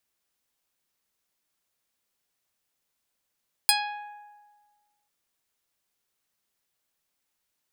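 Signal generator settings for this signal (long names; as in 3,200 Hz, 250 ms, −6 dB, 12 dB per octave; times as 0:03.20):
Karplus-Strong string G#5, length 1.39 s, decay 1.52 s, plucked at 0.43, medium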